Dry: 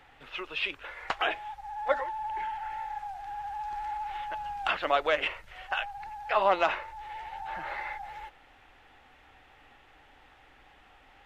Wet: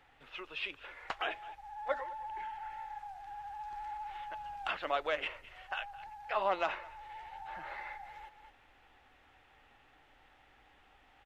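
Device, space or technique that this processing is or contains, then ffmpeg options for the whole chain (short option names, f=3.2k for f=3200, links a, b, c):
ducked delay: -filter_complex "[0:a]asplit=3[a][b][c];[b]adelay=211,volume=-4.5dB[d];[c]apad=whole_len=505565[e];[d][e]sidechaincompress=threshold=-50dB:ratio=4:attack=6.1:release=310[f];[a][f]amix=inputs=2:normalize=0,volume=-7.5dB"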